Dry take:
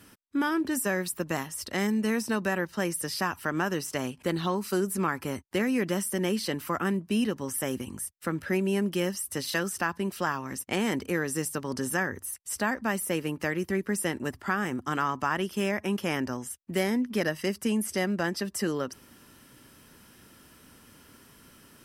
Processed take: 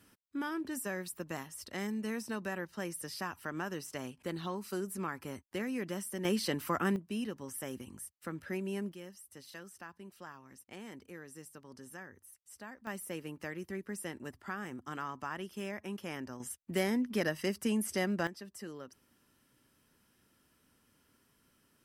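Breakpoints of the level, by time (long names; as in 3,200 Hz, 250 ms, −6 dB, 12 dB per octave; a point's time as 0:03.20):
−10 dB
from 0:06.25 −3 dB
from 0:06.96 −10.5 dB
from 0:08.92 −20 dB
from 0:12.87 −12 dB
from 0:16.40 −4.5 dB
from 0:18.27 −16 dB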